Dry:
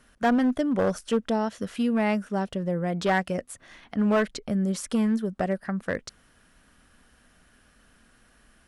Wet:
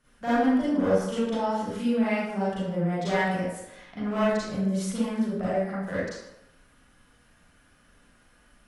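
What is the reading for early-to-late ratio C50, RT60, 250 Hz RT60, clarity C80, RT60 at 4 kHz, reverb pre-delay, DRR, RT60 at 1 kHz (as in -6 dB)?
-5.5 dB, 0.90 s, 0.75 s, 0.5 dB, 0.65 s, 35 ms, -11.5 dB, 0.90 s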